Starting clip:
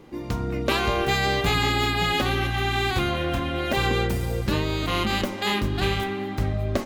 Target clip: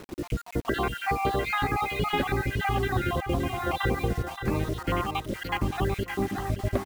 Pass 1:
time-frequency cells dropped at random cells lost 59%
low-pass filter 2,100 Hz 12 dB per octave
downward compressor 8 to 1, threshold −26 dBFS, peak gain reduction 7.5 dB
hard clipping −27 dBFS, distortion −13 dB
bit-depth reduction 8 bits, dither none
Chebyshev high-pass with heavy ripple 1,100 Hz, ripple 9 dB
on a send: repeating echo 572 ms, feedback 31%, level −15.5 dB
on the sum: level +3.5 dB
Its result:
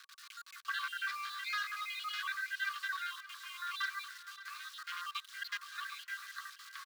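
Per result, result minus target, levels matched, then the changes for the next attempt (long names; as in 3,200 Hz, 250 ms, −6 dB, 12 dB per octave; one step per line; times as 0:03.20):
hard clipping: distortion +25 dB; echo-to-direct −6.5 dB; 1,000 Hz band −2.5 dB
change: hard clipping −19 dBFS, distortion −38 dB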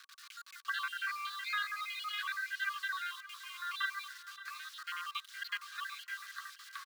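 echo-to-direct −6.5 dB; 1,000 Hz band −2.5 dB
change: repeating echo 572 ms, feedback 31%, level −9 dB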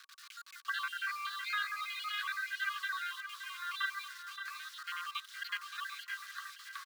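1,000 Hz band −2.5 dB
remove: Chebyshev high-pass with heavy ripple 1,100 Hz, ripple 9 dB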